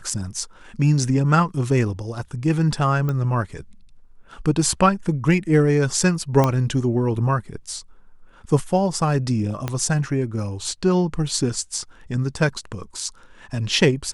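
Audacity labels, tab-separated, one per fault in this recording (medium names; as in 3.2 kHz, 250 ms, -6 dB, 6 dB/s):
3.090000	3.090000	pop -14 dBFS
6.440000	6.440000	pop -6 dBFS
9.680000	9.680000	pop -10 dBFS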